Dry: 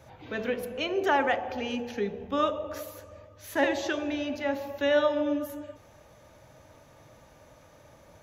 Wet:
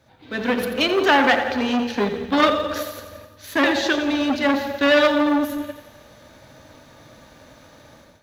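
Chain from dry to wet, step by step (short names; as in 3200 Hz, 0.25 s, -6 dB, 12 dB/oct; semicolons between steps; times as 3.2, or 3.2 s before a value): G.711 law mismatch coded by A; fifteen-band EQ 250 Hz +8 dB, 1600 Hz +5 dB, 4000 Hz +9 dB; thinning echo 87 ms, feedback 62%, high-pass 430 Hz, level -11 dB; AGC gain up to 13 dB; core saturation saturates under 1500 Hz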